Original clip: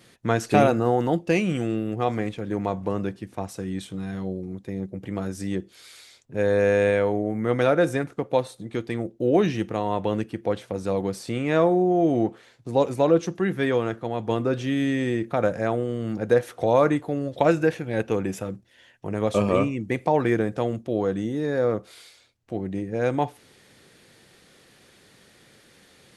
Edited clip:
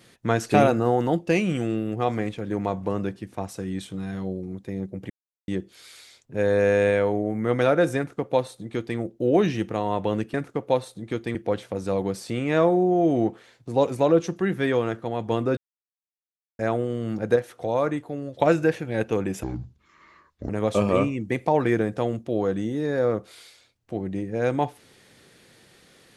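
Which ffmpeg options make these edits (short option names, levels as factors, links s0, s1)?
-filter_complex "[0:a]asplit=11[s0][s1][s2][s3][s4][s5][s6][s7][s8][s9][s10];[s0]atrim=end=5.1,asetpts=PTS-STARTPTS,afade=t=out:st=5.096:d=0.004:c=hsin[s11];[s1]atrim=start=5.1:end=5.48,asetpts=PTS-STARTPTS,volume=0[s12];[s2]atrim=start=5.48:end=10.342,asetpts=PTS-STARTPTS,afade=t=in:d=0.004:c=hsin[s13];[s3]atrim=start=7.968:end=8.982[s14];[s4]atrim=start=10.338:end=14.56,asetpts=PTS-STARTPTS,afade=t=out:st=4.218:d=0.004:c=hsin[s15];[s5]atrim=start=14.56:end=15.58,asetpts=PTS-STARTPTS,volume=0[s16];[s6]atrim=start=15.58:end=16.352,asetpts=PTS-STARTPTS,afade=t=in:d=0.004:c=hsin[s17];[s7]atrim=start=16.348:end=17.392,asetpts=PTS-STARTPTS,volume=0.562[s18];[s8]atrim=start=17.388:end=18.424[s19];[s9]atrim=start=18.42:end=19.09,asetpts=PTS-STARTPTS,asetrate=27783,aresample=44100[s20];[s10]atrim=start=19.086[s21];[s11][s12][s13]concat=n=3:v=0:a=1[s22];[s22][s14]acrossfade=d=0.004:c1=hsin:c2=hsin[s23];[s15][s16][s17]concat=n=3:v=0:a=1[s24];[s23][s24]acrossfade=d=0.004:c1=hsin:c2=hsin[s25];[s25][s18]acrossfade=d=0.004:c1=hsin:c2=hsin[s26];[s26][s19]acrossfade=d=0.004:c1=hsin:c2=hsin[s27];[s27][s20]acrossfade=d=0.004:c1=hsin:c2=hsin[s28];[s28][s21]acrossfade=d=0.004:c1=hsin:c2=hsin"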